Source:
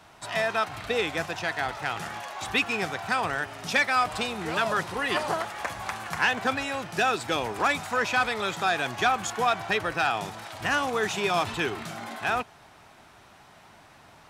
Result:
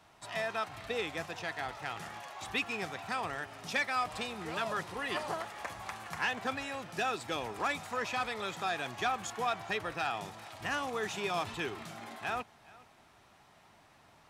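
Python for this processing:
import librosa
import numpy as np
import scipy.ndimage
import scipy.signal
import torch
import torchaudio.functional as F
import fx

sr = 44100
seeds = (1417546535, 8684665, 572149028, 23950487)

y = fx.notch(x, sr, hz=1500.0, q=20.0)
y = y + 10.0 ** (-22.0 / 20.0) * np.pad(y, (int(417 * sr / 1000.0), 0))[:len(y)]
y = F.gain(torch.from_numpy(y), -8.5).numpy()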